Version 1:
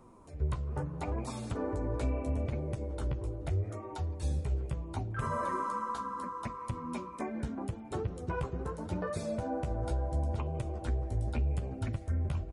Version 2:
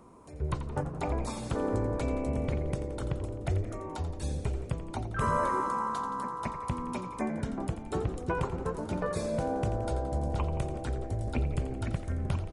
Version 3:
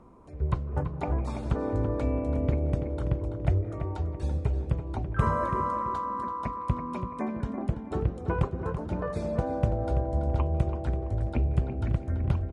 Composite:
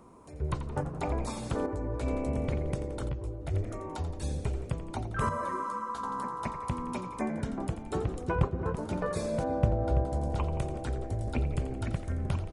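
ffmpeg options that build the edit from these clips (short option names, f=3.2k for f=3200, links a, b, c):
-filter_complex "[0:a]asplit=3[a][b][c];[2:a]asplit=2[d][e];[1:a]asplit=6[f][g][h][i][j][k];[f]atrim=end=1.662[l];[a]atrim=start=1.658:end=2.062[m];[g]atrim=start=2.058:end=3.092[n];[b]atrim=start=3.088:end=3.542[o];[h]atrim=start=3.538:end=5.292[p];[c]atrim=start=5.288:end=6.032[q];[i]atrim=start=6.028:end=8.352[r];[d]atrim=start=8.348:end=8.752[s];[j]atrim=start=8.748:end=9.442[t];[e]atrim=start=9.438:end=10.052[u];[k]atrim=start=10.048[v];[l][m]acrossfade=d=0.004:c1=hsin:c2=hsin[w];[w][n]acrossfade=d=0.004:c1=hsin:c2=hsin[x];[x][o]acrossfade=d=0.004:c1=hsin:c2=hsin[y];[y][p]acrossfade=d=0.004:c1=hsin:c2=hsin[z];[z][q]acrossfade=d=0.004:c1=hsin:c2=hsin[aa];[aa][r]acrossfade=d=0.004:c1=hsin:c2=hsin[ab];[ab][s]acrossfade=d=0.004:c1=hsin:c2=hsin[ac];[ac][t]acrossfade=d=0.004:c1=hsin:c2=hsin[ad];[ad][u]acrossfade=d=0.004:c1=hsin:c2=hsin[ae];[ae][v]acrossfade=d=0.004:c1=hsin:c2=hsin"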